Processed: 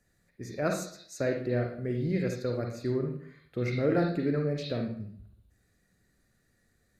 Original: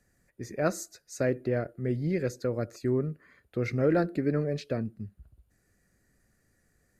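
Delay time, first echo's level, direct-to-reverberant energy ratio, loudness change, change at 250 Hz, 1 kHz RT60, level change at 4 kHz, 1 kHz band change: no echo audible, no echo audible, 2.0 dB, −1.0 dB, −0.5 dB, 0.55 s, +4.0 dB, −1.0 dB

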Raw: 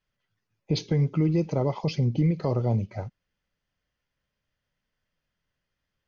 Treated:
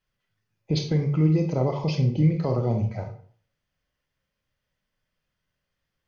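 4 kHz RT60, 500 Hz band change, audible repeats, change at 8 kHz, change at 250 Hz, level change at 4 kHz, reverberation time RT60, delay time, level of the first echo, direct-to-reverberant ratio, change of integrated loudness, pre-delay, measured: 0.35 s, +1.5 dB, no echo audible, can't be measured, +2.0 dB, +1.5 dB, 0.50 s, no echo audible, no echo audible, 4.0 dB, +2.0 dB, 27 ms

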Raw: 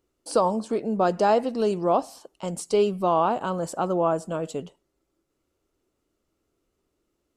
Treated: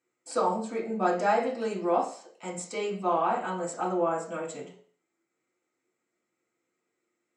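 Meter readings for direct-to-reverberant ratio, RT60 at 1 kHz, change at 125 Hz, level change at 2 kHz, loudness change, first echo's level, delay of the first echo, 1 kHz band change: −4.5 dB, 0.45 s, −8.5 dB, +1.5 dB, −4.5 dB, no echo audible, no echo audible, −3.0 dB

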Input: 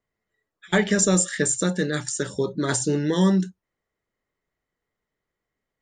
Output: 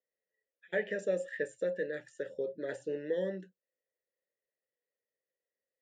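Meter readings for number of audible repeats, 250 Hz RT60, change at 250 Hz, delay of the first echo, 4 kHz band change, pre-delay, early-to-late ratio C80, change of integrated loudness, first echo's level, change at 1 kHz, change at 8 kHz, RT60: no echo audible, no reverb audible, −21.5 dB, no echo audible, −24.0 dB, no reverb audible, no reverb audible, −14.0 dB, no echo audible, −22.5 dB, below −30 dB, no reverb audible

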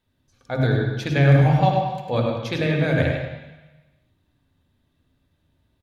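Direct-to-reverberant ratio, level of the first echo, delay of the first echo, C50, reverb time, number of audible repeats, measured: 0.0 dB, −6.0 dB, 101 ms, 0.0 dB, 1.1 s, 1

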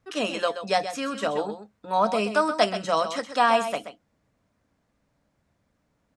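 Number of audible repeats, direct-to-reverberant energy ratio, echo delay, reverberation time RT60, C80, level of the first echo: 1, no reverb audible, 129 ms, no reverb audible, no reverb audible, −10.5 dB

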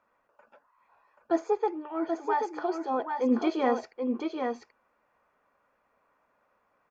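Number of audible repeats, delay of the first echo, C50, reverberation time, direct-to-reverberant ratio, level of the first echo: 1, 782 ms, no reverb audible, no reverb audible, no reverb audible, −5.0 dB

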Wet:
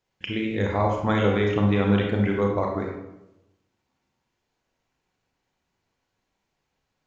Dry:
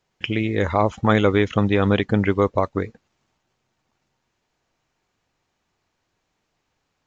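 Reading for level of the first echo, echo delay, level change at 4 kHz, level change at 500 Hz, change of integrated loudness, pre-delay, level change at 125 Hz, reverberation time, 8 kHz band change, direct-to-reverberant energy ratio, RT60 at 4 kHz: no echo audible, no echo audible, −4.0 dB, −3.5 dB, −3.5 dB, 29 ms, −2.0 dB, 0.90 s, can't be measured, −0.5 dB, 0.50 s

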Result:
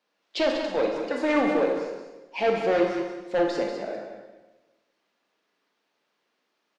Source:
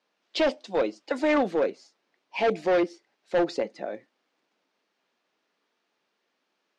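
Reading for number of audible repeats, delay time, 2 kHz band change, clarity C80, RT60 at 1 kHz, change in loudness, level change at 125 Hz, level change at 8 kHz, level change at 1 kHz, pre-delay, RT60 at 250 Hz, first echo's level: 1, 191 ms, +1.0 dB, 4.0 dB, 1.1 s, +1.0 dB, +1.5 dB, can't be measured, +1.5 dB, 25 ms, 1.2 s, −9.0 dB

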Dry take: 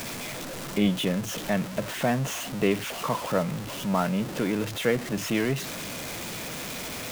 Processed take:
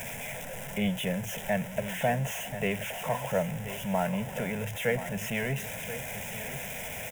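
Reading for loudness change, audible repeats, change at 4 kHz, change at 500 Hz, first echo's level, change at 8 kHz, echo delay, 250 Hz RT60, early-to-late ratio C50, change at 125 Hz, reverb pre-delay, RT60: −3.5 dB, 1, −6.0 dB, −3.0 dB, −12.0 dB, −4.0 dB, 1,031 ms, no reverb audible, no reverb audible, −2.5 dB, no reverb audible, no reverb audible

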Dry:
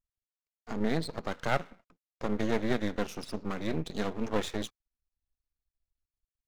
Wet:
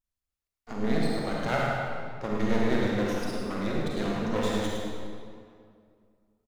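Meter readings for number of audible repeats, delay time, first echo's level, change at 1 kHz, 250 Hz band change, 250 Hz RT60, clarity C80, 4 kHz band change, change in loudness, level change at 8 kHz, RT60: 1, 106 ms, −5.5 dB, +4.5 dB, +4.5 dB, 2.4 s, −1.5 dB, +3.0 dB, +4.0 dB, +2.5 dB, 2.2 s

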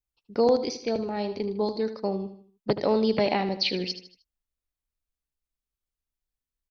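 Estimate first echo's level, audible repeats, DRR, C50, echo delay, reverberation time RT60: −11.5 dB, 4, no reverb audible, no reverb audible, 77 ms, no reverb audible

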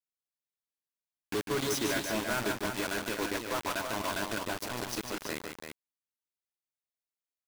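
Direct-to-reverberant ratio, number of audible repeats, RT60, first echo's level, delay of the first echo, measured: no reverb audible, 2, no reverb audible, −6.0 dB, 149 ms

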